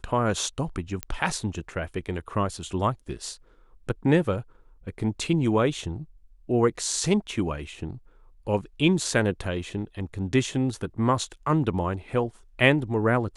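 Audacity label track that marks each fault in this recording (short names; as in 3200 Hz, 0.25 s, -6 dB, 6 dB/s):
1.030000	1.030000	pop -13 dBFS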